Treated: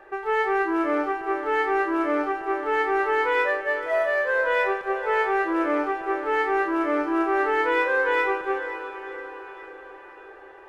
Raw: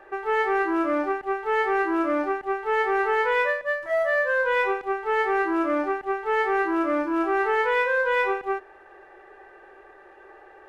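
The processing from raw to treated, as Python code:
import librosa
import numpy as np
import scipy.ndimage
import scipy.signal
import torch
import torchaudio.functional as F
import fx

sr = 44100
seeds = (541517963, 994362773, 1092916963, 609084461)

y = x + fx.echo_diffused(x, sr, ms=566, feedback_pct=51, wet_db=-11.0, dry=0)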